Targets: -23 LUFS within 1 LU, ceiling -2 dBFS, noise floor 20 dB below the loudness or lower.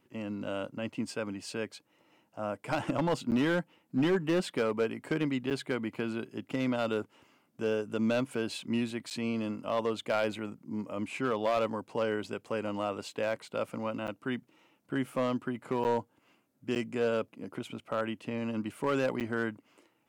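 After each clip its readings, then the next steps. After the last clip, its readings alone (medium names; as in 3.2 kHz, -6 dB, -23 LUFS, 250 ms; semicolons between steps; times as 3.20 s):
clipped samples 0.9%; clipping level -22.0 dBFS; dropouts 7; longest dropout 8.6 ms; loudness -33.0 LUFS; peak level -22.0 dBFS; loudness target -23.0 LUFS
-> clip repair -22 dBFS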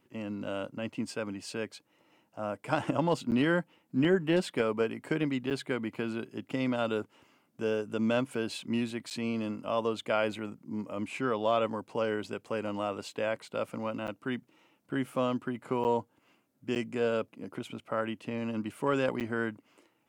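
clipped samples 0.0%; dropouts 7; longest dropout 8.6 ms
-> interpolate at 3.31/5.50/9.10/14.07/15.84/16.75/19.20 s, 8.6 ms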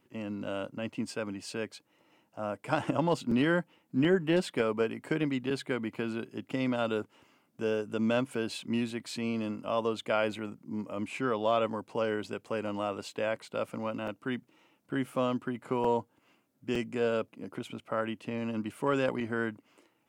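dropouts 0; loudness -32.5 LUFS; peak level -13.0 dBFS; loudness target -23.0 LUFS
-> trim +9.5 dB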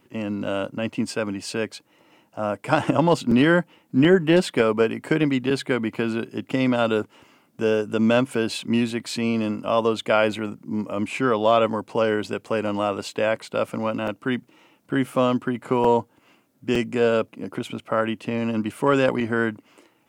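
loudness -23.0 LUFS; peak level -3.5 dBFS; noise floor -62 dBFS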